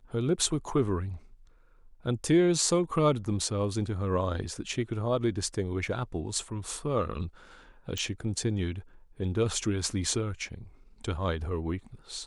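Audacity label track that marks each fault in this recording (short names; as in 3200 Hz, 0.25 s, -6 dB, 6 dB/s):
7.980000	7.980000	pop -18 dBFS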